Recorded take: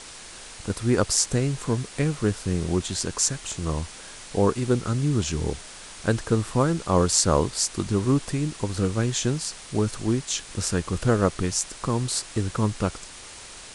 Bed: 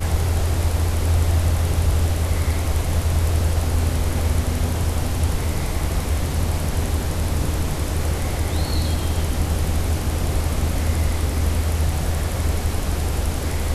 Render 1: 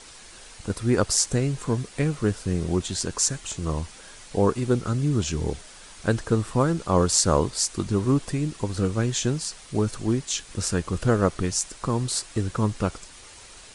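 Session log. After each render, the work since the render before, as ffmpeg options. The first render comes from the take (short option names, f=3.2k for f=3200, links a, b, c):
-af "afftdn=nr=6:nf=-43"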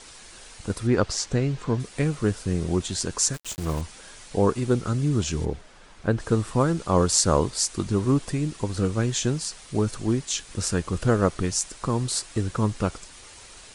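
-filter_complex "[0:a]asettb=1/sr,asplit=3[a][b][c];[a]atrim=end=0.874[d];[b]atrim=start=0.87:end=1.8,asetpts=PTS-STARTPTS,afade=t=in:d=0.004:c=qsin,afade=t=out:st=0.926:d=0.004:c=qsin,lowpass=4.8k[e];[c]atrim=start=1.796[f];[d][e]acrossfade=d=0.004:c1=hsin:c2=qsin[g];[g][f]acrossfade=d=0.004:c1=qsin:c2=hsin,asettb=1/sr,asplit=3[h][i][j];[h]atrim=end=3.344[k];[i]atrim=start=3.34:end=3.81,asetpts=PTS-STARTPTS,afade=t=in:d=0.004:c=qsin,afade=t=out:st=0.466:d=0.004:c=qsin,aeval=exprs='val(0)*gte(abs(val(0)),0.02)':c=same[l];[j]atrim=start=3.806[m];[k][l]acrossfade=d=0.004:c1=hsin:c2=qsin[n];[n][m]acrossfade=d=0.004:c1=qsin:c2=hsin,asettb=1/sr,asplit=3[o][p][q];[o]atrim=end=5.454[r];[p]atrim=start=5.45:end=6.2,asetpts=PTS-STARTPTS,afade=t=in:d=0.004:c=qsin,afade=t=out:st=0.746:d=0.004:c=qsin,lowpass=f=1.6k:p=1[s];[q]atrim=start=6.196[t];[r][s]acrossfade=d=0.004:c1=hsin:c2=qsin[u];[u][t]acrossfade=d=0.004:c1=qsin:c2=hsin"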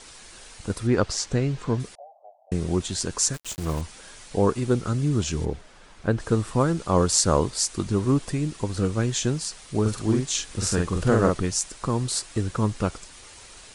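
-filter_complex "[0:a]asettb=1/sr,asplit=3[a][b][c];[a]atrim=end=1.954[d];[b]atrim=start=1.95:end=2.52,asetpts=PTS-STARTPTS,afade=t=in:d=0.004:c=qsin,afade=t=out:st=0.566:d=0.004:c=qsin,asuperpass=centerf=700:order=8:qfactor=3.1[e];[c]atrim=start=2.516[f];[d][e]acrossfade=d=0.004:c1=hsin:c2=qsin[g];[g][f]acrossfade=d=0.004:c1=qsin:c2=hsin,asettb=1/sr,asplit=3[h][i][j];[h]atrim=end=9.814[k];[i]atrim=start=9.81:end=11.39,asetpts=PTS-STARTPTS,afade=t=in:d=0.004:c=qsin,afade=t=out:st=1.576:d=0.004:c=qsin,asplit=2[l][m];[m]adelay=46,volume=-3dB[n];[l][n]amix=inputs=2:normalize=0,atrim=end_sample=69678[o];[j]atrim=start=11.386[p];[k][o]acrossfade=d=0.004:c1=hsin:c2=qsin[q];[q][p]acrossfade=d=0.004:c1=qsin:c2=hsin"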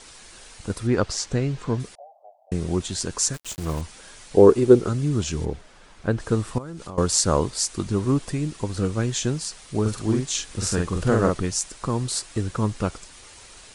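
-filter_complex "[0:a]asettb=1/sr,asplit=3[a][b][c];[a]atrim=end=4.364[d];[b]atrim=start=4.36:end=4.89,asetpts=PTS-STARTPTS,afade=t=in:d=0.004:c=qsin,afade=t=out:st=0.526:d=0.004:c=qsin,equalizer=f=390:w=1.4:g=12.5[e];[c]atrim=start=4.886[f];[d][e]acrossfade=d=0.004:c1=hsin:c2=qsin[g];[g][f]acrossfade=d=0.004:c1=qsin:c2=hsin,asettb=1/sr,asplit=3[h][i][j];[h]atrim=end=6.584[k];[i]atrim=start=6.58:end=6.98,asetpts=PTS-STARTPTS,afade=t=in:d=0.004:c=qsin,afade=t=out:st=0.396:d=0.004:c=qsin,acompressor=threshold=-31dB:ratio=12:attack=3.2:release=140:knee=1:detection=peak[l];[j]atrim=start=6.976[m];[k][l]acrossfade=d=0.004:c1=hsin:c2=qsin[n];[n][m]acrossfade=d=0.004:c1=qsin:c2=hsin"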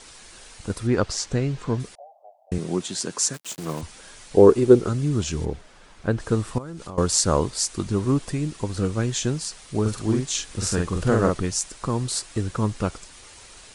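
-filter_complex "[0:a]asettb=1/sr,asplit=3[a][b][c];[a]atrim=end=2.584[d];[b]atrim=start=2.58:end=3.83,asetpts=PTS-STARTPTS,afade=t=in:d=0.004:c=qsin,afade=t=out:st=1.246:d=0.004:c=qsin,highpass=f=150:w=0.5412,highpass=f=150:w=1.3066[e];[c]atrim=start=3.826[f];[d][e]acrossfade=d=0.004:c1=hsin:c2=qsin[g];[g][f]acrossfade=d=0.004:c1=qsin:c2=hsin"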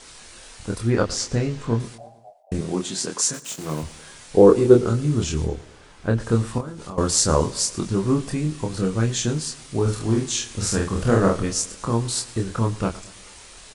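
-filter_complex "[0:a]asplit=2[a][b];[b]adelay=26,volume=-3.5dB[c];[a][c]amix=inputs=2:normalize=0,aecho=1:1:112|224|336|448:0.1|0.055|0.0303|0.0166"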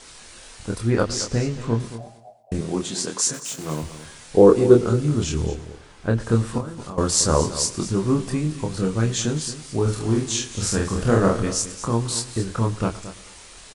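-af "aecho=1:1:224:0.158"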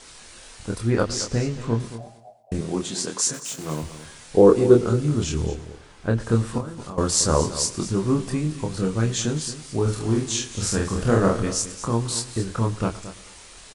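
-af "volume=-1dB,alimiter=limit=-3dB:level=0:latency=1"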